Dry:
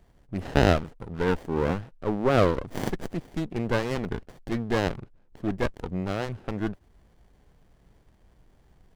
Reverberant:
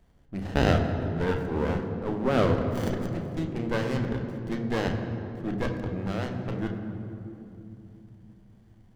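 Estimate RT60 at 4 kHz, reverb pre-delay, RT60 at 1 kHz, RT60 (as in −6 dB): 1.7 s, 3 ms, 2.7 s, 2.9 s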